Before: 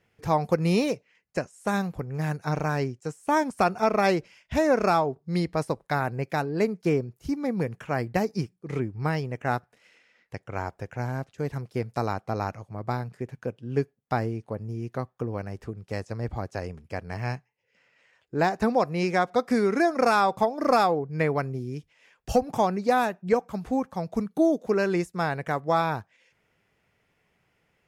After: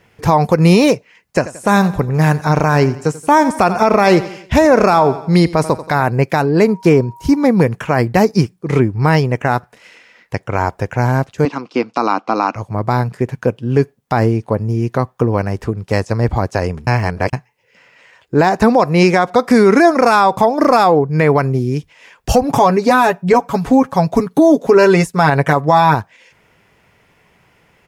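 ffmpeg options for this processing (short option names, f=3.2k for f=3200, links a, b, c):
-filter_complex "[0:a]asplit=3[a][b][c];[a]afade=t=out:st=1.38:d=0.02[d];[b]aecho=1:1:88|176|264|352:0.126|0.0567|0.0255|0.0115,afade=t=in:st=1.38:d=0.02,afade=t=out:st=6.03:d=0.02[e];[c]afade=t=in:st=6.03:d=0.02[f];[d][e][f]amix=inputs=3:normalize=0,asettb=1/sr,asplit=3[g][h][i];[g]atrim=end=6.634[j];[h]atrim=start=6.63:end=7.47,asetpts=PTS-STARTPTS,afade=t=in:d=0.004:c=qsin,afade=t=out:st=0.836:d=0.004:c=qsin,aeval=exprs='val(0)+0.00141*sin(2*PI*950*n/s)':c=same[k];[i]atrim=start=7.466[l];[j][k]acrossfade=d=0.004:c1=hsin:c2=qsin[m];[m][l]acrossfade=d=0.004:c1=qsin:c2=hsin,asettb=1/sr,asplit=3[n][o][p];[n]atrim=end=11.454[q];[o]atrim=start=11.45:end=12.56,asetpts=PTS-STARTPTS,afade=t=in:d=0.004:c=qsin,afade=t=out:st=1.106:d=0.004:c=qsin,highpass=f=240:w=0.5412,highpass=f=240:w=1.3066,equalizer=f=290:t=q:w=4:g=6,equalizer=f=410:t=q:w=4:g=-7,equalizer=f=610:t=q:w=4:g=-5,equalizer=f=1.2k:t=q:w=4:g=5,equalizer=f=1.8k:t=q:w=4:g=-7,equalizer=f=2.7k:t=q:w=4:g=6,lowpass=f=5.9k:w=0.5412,lowpass=f=5.9k:w=1.3066[r];[p]atrim=start=12.556[s];[q][r]acrossfade=d=0.004:c1=hsin:c2=qsin[t];[t][s]acrossfade=d=0.004:c1=qsin:c2=hsin,asettb=1/sr,asplit=3[u][v][w];[u]atrim=end=22.434[x];[v]atrim=start=22.43:end=25.95,asetpts=PTS-STARTPTS,afade=t=in:d=0.004:c=qsin,afade=t=out:st=3.516:d=0.004:c=qsin,aecho=1:1:7.2:0.65,atrim=end_sample=155232[y];[w]atrim=start=25.946[z];[x][y]acrossfade=d=0.004:c1=hsin:c2=qsin[aa];[aa][z]acrossfade=d=0.004:c1=qsin:c2=hsin,asplit=3[ab][ac][ad];[ab]atrim=end=16.872[ae];[ac]atrim=start=16.868:end=17.332,asetpts=PTS-STARTPTS,areverse[af];[ad]atrim=start=17.328[ag];[ae][af]acrossfade=d=0.004:c1=hsin:c2=hsin[ah];[ah][ag]acrossfade=d=0.004:c1=hsin:c2=hsin,equalizer=f=980:w=5.6:g=5,alimiter=level_in=17dB:limit=-1dB:release=50:level=0:latency=1,volume=-1dB"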